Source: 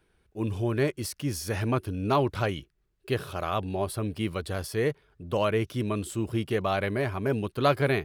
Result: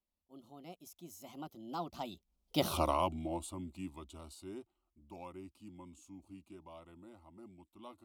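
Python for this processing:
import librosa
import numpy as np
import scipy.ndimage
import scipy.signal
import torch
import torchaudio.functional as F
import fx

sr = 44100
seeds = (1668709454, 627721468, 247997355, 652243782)

y = fx.doppler_pass(x, sr, speed_mps=60, closest_m=5.7, pass_at_s=2.72)
y = fx.fixed_phaser(y, sr, hz=460.0, stages=6)
y = F.gain(torch.from_numpy(y), 9.0).numpy()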